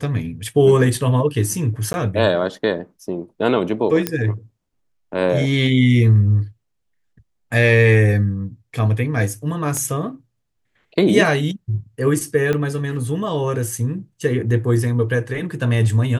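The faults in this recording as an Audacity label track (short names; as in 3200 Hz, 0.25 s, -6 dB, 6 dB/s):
1.930000	1.940000	gap 11 ms
4.070000	4.070000	pop -4 dBFS
9.770000	9.770000	pop -13 dBFS
12.530000	12.530000	pop -10 dBFS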